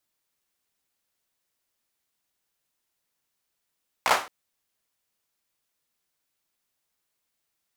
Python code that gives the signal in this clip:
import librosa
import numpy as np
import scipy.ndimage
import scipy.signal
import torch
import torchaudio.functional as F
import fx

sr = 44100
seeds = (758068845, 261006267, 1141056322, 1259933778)

y = fx.drum_clap(sr, seeds[0], length_s=0.22, bursts=4, spacing_ms=16, hz=930.0, decay_s=0.34)